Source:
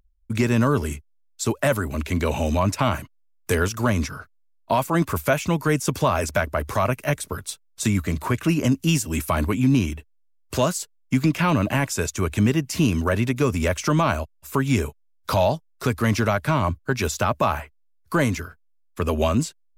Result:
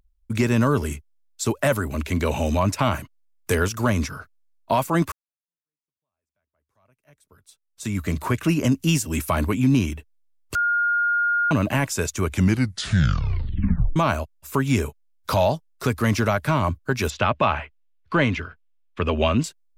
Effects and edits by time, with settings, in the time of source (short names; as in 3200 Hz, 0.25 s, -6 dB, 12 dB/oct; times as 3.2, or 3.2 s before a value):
5.12–8.08 fade in exponential
10.55–11.51 bleep 1420 Hz -18 dBFS
12.25 tape stop 1.71 s
17.1–19.44 synth low-pass 3000 Hz, resonance Q 2